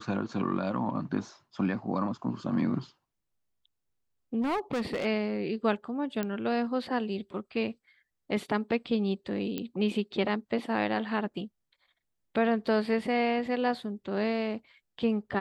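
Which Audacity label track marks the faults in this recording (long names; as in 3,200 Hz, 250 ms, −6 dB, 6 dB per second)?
4.410000	5.060000	clipping −26.5 dBFS
6.230000	6.230000	click −18 dBFS
9.580000	9.580000	click −19 dBFS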